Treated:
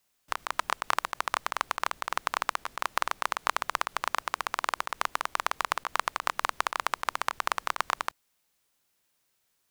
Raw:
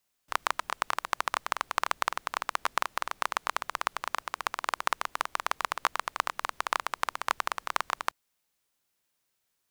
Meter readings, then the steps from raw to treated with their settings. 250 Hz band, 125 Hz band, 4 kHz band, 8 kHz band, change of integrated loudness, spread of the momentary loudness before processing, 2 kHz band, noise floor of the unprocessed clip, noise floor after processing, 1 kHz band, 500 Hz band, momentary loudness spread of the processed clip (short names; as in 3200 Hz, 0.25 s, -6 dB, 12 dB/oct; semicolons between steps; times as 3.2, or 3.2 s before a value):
+1.0 dB, n/a, +1.0 dB, +1.0 dB, +1.0 dB, 3 LU, +1.0 dB, -79 dBFS, -75 dBFS, +1.0 dB, +1.0 dB, 2 LU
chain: negative-ratio compressor -30 dBFS, ratio -0.5; gain +2.5 dB